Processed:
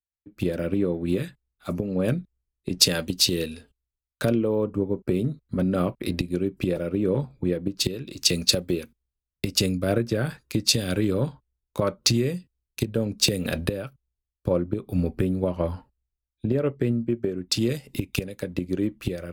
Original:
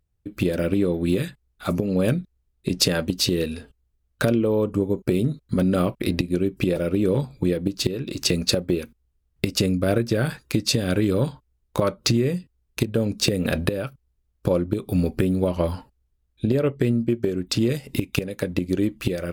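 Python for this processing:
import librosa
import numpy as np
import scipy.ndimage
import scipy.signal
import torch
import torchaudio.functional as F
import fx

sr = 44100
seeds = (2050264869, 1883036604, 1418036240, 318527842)

y = fx.band_widen(x, sr, depth_pct=70)
y = y * librosa.db_to_amplitude(-3.0)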